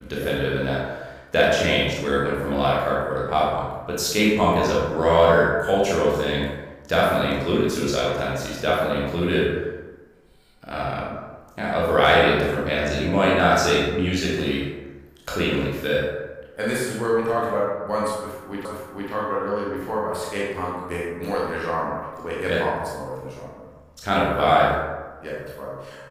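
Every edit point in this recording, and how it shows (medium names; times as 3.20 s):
18.65 s: repeat of the last 0.46 s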